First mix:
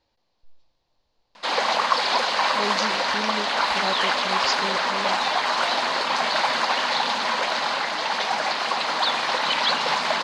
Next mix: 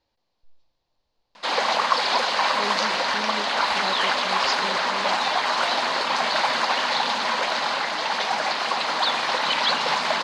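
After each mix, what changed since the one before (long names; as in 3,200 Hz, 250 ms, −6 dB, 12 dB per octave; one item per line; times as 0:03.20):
speech −3.5 dB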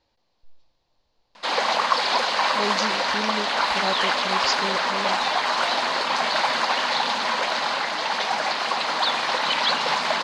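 speech +5.0 dB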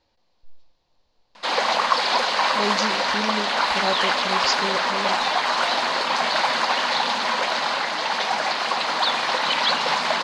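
reverb: on, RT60 0.45 s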